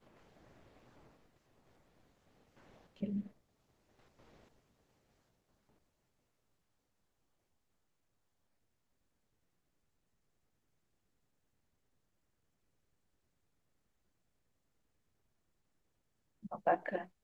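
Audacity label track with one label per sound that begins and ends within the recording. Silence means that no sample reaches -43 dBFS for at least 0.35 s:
3.020000	3.270000	sound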